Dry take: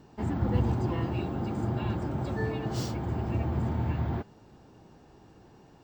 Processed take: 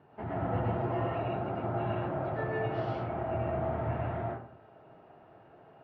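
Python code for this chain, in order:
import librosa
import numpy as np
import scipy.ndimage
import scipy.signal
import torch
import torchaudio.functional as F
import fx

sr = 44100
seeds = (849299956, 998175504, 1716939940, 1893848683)

y = fx.cabinet(x, sr, low_hz=120.0, low_slope=12, high_hz=2700.0, hz=(210.0, 300.0, 670.0, 1400.0), db=(-8, -6, 7, 4))
y = fx.rev_freeverb(y, sr, rt60_s=0.54, hf_ratio=0.55, predelay_ms=70, drr_db=-3.0)
y = y * 10.0 ** (-4.0 / 20.0)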